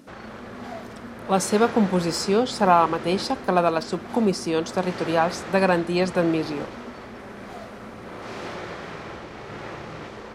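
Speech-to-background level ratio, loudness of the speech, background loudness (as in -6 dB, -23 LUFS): 14.0 dB, -22.5 LUFS, -36.5 LUFS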